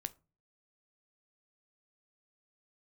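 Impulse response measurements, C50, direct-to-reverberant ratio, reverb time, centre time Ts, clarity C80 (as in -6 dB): 22.0 dB, 12.5 dB, 0.35 s, 2 ms, 28.5 dB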